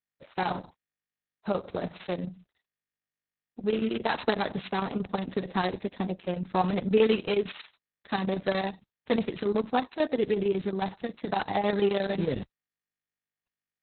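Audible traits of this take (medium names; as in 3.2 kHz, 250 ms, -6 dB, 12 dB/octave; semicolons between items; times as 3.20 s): a buzz of ramps at a fixed pitch in blocks of 8 samples; chopped level 11 Hz, depth 60%, duty 75%; a quantiser's noise floor 12-bit, dither none; Opus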